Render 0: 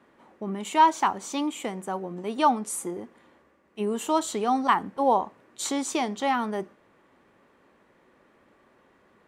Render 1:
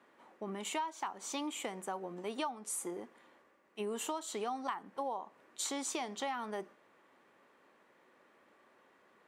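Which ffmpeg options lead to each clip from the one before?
-af "highpass=f=470:p=1,acompressor=threshold=-31dB:ratio=16,volume=-3dB"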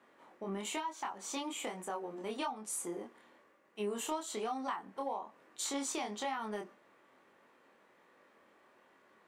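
-filter_complex "[0:a]flanger=delay=22.5:depth=3.3:speed=1.1,asplit=2[a][b];[b]asoftclip=type=tanh:threshold=-35.5dB,volume=-9dB[c];[a][c]amix=inputs=2:normalize=0,volume=1dB"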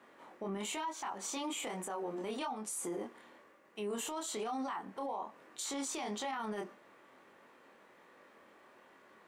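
-af "alimiter=level_in=12dB:limit=-24dB:level=0:latency=1:release=23,volume=-12dB,volume=4.5dB"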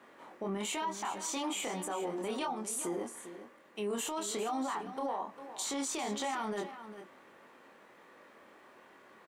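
-af "aecho=1:1:401:0.251,volume=3dB"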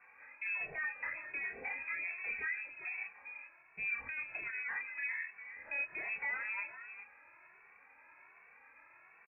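-filter_complex "[0:a]lowpass=f=2.4k:t=q:w=0.5098,lowpass=f=2.4k:t=q:w=0.6013,lowpass=f=2.4k:t=q:w=0.9,lowpass=f=2.4k:t=q:w=2.563,afreqshift=-2800,asplit=2[a][b];[b]adelay=2.2,afreqshift=1.3[c];[a][c]amix=inputs=2:normalize=1"

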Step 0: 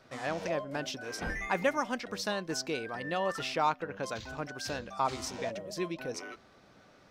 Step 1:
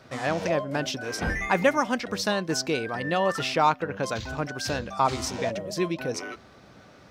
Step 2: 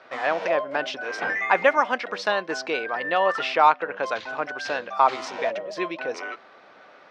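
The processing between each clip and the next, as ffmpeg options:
-af "highpass=58,lowshelf=f=120:g=8.5,volume=7dB"
-af "highpass=560,lowpass=2.8k,volume=5.5dB"

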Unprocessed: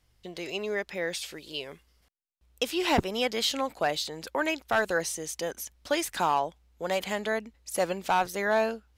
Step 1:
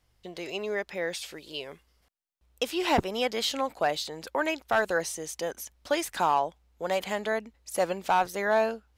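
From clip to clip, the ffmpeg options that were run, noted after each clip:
-af "equalizer=f=780:t=o:w=2:g=3.5,volume=-2dB"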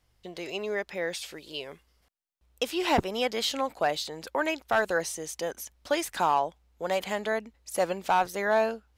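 -af anull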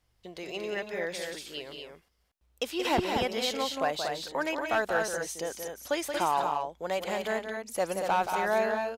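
-af "aecho=1:1:177.8|233.2:0.447|0.562,volume=-3dB"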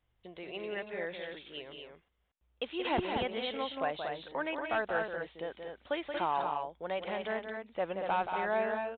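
-af "aresample=8000,aresample=44100,volume=-4.5dB"

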